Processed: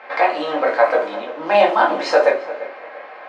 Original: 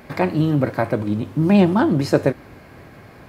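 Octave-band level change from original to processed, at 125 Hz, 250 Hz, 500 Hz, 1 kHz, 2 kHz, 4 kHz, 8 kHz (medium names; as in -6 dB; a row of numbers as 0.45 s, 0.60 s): under -25 dB, -13.0 dB, +5.5 dB, +9.5 dB, +8.5 dB, +6.0 dB, no reading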